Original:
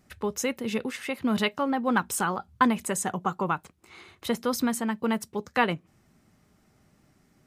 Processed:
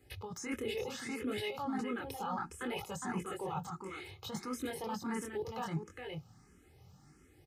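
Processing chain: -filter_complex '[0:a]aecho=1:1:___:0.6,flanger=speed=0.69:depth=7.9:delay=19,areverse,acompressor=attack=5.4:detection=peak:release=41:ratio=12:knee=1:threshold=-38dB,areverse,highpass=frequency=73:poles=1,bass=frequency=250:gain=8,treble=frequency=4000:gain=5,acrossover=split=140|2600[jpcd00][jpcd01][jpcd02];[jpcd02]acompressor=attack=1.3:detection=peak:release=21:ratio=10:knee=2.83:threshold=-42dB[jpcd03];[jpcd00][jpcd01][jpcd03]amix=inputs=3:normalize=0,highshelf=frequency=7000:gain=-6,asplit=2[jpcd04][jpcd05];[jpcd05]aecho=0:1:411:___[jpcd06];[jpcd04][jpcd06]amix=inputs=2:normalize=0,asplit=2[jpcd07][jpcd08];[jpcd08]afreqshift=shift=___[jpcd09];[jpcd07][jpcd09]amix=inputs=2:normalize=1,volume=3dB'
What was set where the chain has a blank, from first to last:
2.4, 0.501, 1.5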